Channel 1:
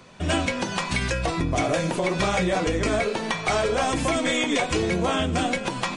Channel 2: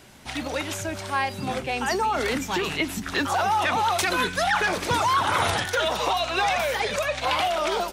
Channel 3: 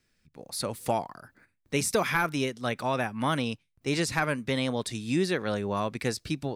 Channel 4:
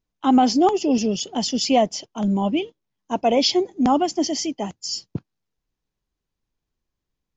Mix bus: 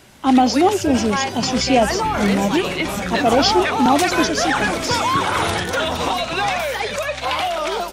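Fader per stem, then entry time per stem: -4.0, +2.5, -6.0, +2.0 dB; 0.65, 0.00, 0.00, 0.00 s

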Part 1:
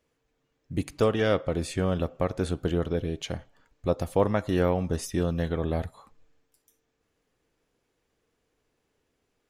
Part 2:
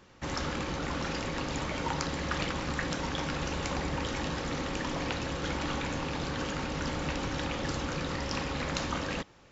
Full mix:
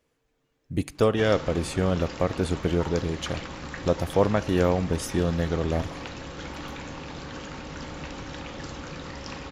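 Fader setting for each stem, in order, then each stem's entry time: +2.0, -4.0 dB; 0.00, 0.95 s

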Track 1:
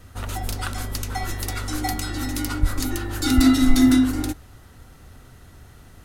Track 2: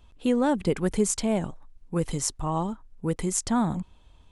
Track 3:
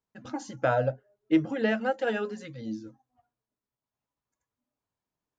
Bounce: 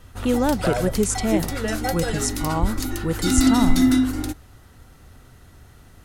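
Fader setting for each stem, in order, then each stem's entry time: -1.5, +2.5, -1.0 dB; 0.00, 0.00, 0.00 s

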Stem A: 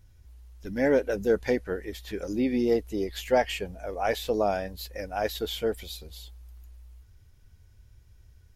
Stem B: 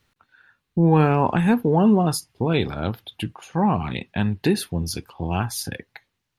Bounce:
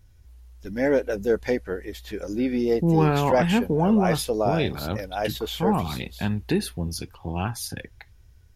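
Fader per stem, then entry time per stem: +1.5, -3.5 dB; 0.00, 2.05 s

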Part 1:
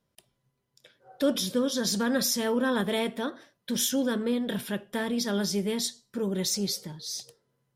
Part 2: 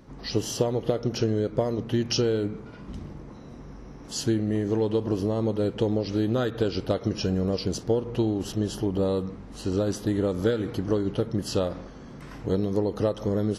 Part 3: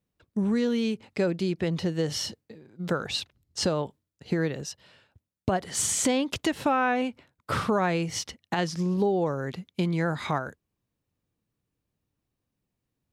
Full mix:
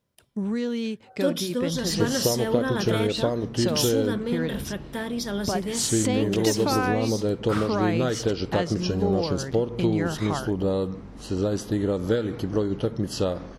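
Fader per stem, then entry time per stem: -1.0, +0.5, -2.0 dB; 0.00, 1.65, 0.00 s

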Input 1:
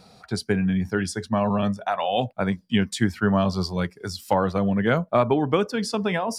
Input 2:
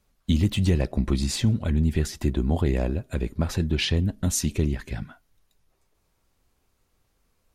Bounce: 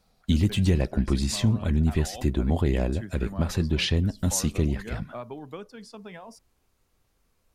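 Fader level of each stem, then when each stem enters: -18.0, -0.5 dB; 0.00, 0.00 s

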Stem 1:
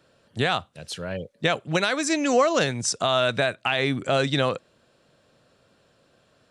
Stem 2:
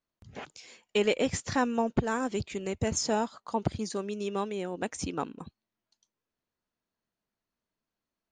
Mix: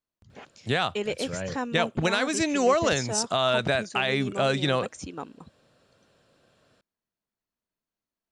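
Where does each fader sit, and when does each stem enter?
-2.0, -4.0 dB; 0.30, 0.00 s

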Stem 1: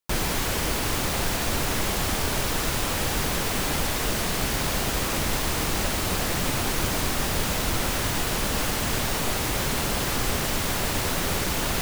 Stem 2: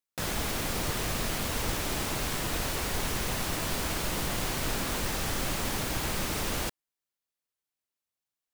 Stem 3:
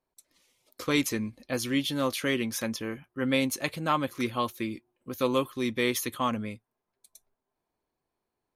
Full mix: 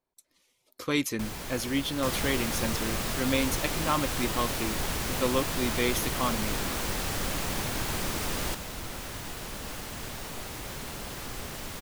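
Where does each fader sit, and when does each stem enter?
-12.5, -1.0, -1.5 dB; 1.10, 1.85, 0.00 s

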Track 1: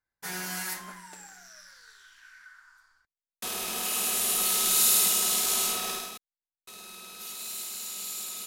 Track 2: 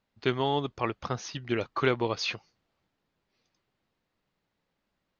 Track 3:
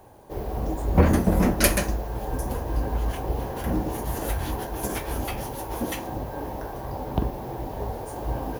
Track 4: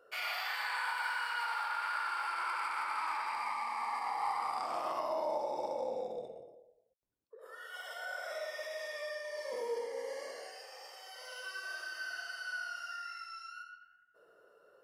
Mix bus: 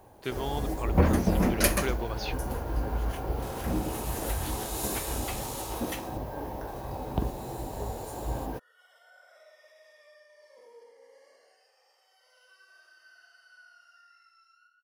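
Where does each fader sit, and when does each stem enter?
-15.0, -7.0, -4.0, -16.0 dB; 0.00, 0.00, 0.00, 1.05 s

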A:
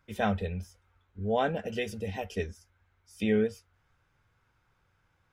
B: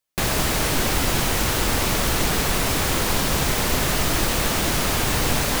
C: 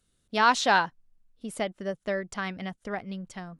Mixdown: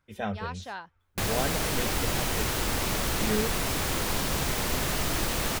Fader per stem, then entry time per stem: -4.0, -7.0, -17.0 dB; 0.00, 1.00, 0.00 s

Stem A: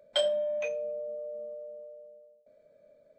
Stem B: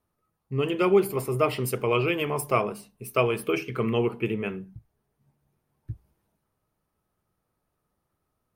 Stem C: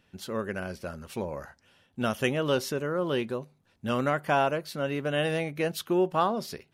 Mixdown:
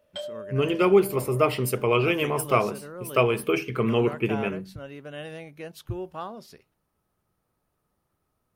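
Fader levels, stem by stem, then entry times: -8.5, +2.0, -10.5 dB; 0.00, 0.00, 0.00 s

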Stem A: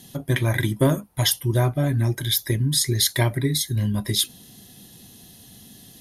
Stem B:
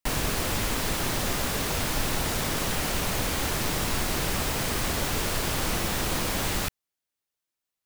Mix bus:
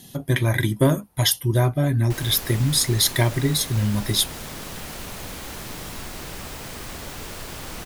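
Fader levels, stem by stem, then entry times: +1.0, -7.5 dB; 0.00, 2.05 s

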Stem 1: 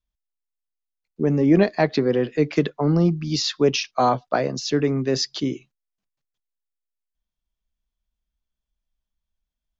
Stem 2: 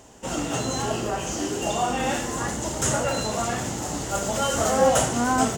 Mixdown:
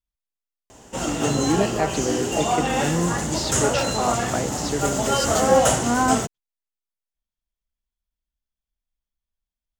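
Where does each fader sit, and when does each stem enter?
-5.5, +2.5 dB; 0.00, 0.70 s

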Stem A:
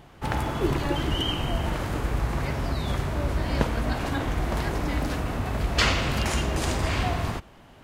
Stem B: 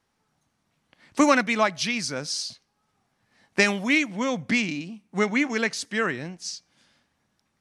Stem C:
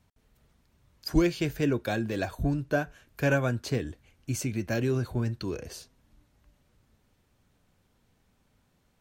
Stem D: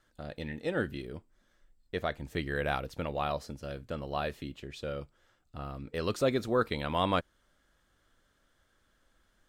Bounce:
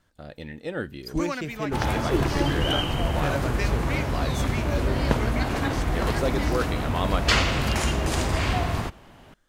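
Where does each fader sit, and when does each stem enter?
+1.5, -12.5, -4.5, +0.5 dB; 1.50, 0.00, 0.00, 0.00 s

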